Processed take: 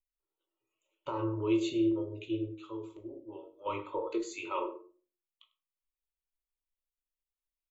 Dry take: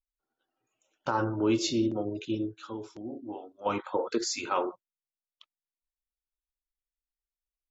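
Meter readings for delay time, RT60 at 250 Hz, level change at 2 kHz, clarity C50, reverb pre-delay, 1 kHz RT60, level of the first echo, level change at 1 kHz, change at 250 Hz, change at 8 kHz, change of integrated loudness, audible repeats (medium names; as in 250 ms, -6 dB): 99 ms, 0.55 s, -6.5 dB, 12.5 dB, 3 ms, 0.40 s, -18.5 dB, -6.5 dB, -2.0 dB, no reading, -3.0 dB, 1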